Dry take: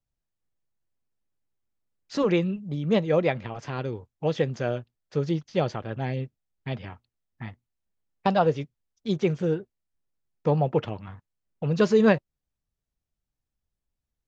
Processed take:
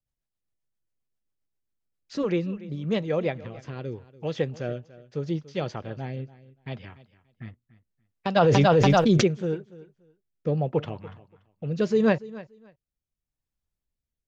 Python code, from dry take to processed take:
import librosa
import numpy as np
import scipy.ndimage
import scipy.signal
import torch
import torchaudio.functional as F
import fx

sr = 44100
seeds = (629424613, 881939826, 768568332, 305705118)

y = fx.rotary_switch(x, sr, hz=7.5, then_hz=0.75, switch_at_s=1.95)
y = fx.echo_feedback(y, sr, ms=288, feedback_pct=19, wet_db=-18.5)
y = fx.env_flatten(y, sr, amount_pct=100, at=(8.35, 9.26), fade=0.02)
y = y * librosa.db_to_amplitude(-1.5)